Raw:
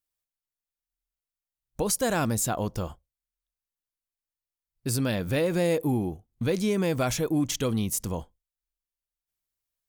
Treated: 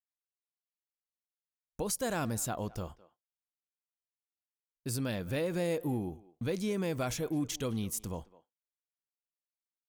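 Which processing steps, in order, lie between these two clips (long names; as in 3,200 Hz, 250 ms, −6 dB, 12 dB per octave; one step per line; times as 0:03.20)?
noise gate with hold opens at −42 dBFS
far-end echo of a speakerphone 210 ms, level −19 dB
level −7.5 dB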